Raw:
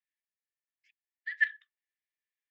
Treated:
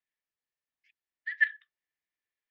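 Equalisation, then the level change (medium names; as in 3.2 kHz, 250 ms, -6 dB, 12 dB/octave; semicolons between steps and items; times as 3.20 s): distance through air 140 m; +3.0 dB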